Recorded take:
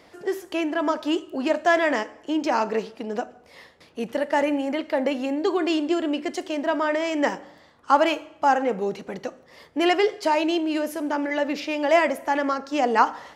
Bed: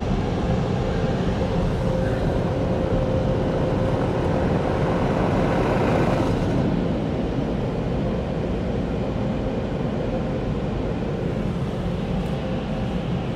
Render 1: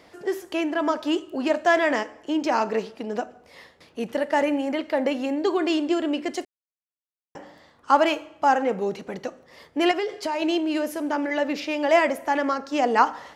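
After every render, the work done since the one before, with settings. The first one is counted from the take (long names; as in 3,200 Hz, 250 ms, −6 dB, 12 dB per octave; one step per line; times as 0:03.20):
0:06.45–0:07.35: silence
0:09.91–0:10.42: downward compressor 10 to 1, threshold −22 dBFS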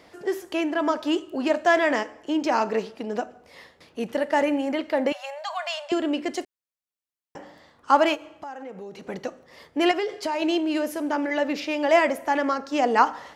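0:05.12–0:05.92: linear-phase brick-wall high-pass 550 Hz
0:08.15–0:09.09: downward compressor 4 to 1, threshold −37 dBFS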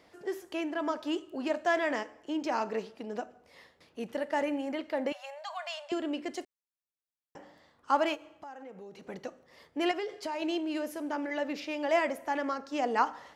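level −8.5 dB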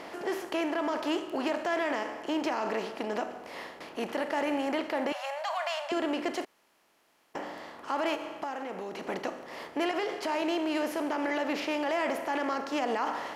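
compressor on every frequency bin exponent 0.6
brickwall limiter −21 dBFS, peak gain reduction 9.5 dB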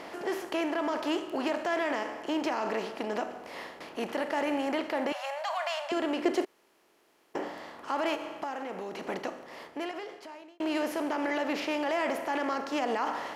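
0:06.24–0:07.48: parametric band 380 Hz +9 dB 0.69 octaves
0:09.06–0:10.60: fade out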